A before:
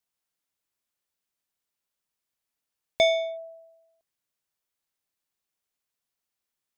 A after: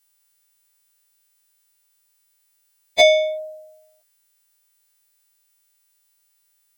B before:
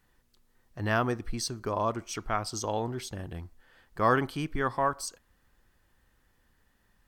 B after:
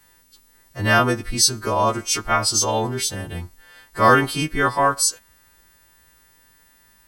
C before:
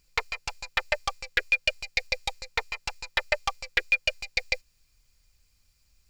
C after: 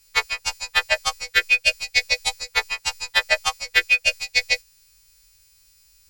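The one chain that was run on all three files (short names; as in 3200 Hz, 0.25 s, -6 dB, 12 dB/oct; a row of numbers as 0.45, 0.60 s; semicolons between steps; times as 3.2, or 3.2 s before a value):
frequency quantiser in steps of 2 st; normalise peaks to -2 dBFS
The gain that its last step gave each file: +8.5, +9.5, +4.5 dB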